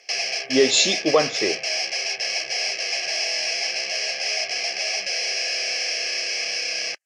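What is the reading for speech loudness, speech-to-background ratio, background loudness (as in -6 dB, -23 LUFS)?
-20.5 LUFS, 2.5 dB, -23.0 LUFS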